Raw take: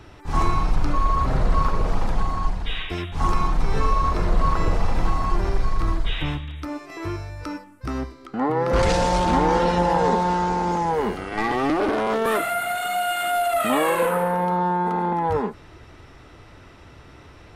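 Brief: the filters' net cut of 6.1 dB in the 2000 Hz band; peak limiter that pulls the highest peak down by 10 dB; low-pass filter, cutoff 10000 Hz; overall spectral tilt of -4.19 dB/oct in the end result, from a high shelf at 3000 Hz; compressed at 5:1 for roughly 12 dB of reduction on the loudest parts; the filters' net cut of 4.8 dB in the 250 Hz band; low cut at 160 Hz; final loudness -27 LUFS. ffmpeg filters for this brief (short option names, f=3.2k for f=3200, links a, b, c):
-af "highpass=160,lowpass=10k,equalizer=f=250:t=o:g=-5.5,equalizer=f=2k:t=o:g=-6.5,highshelf=f=3k:g=-5,acompressor=threshold=-32dB:ratio=5,volume=13dB,alimiter=limit=-19dB:level=0:latency=1"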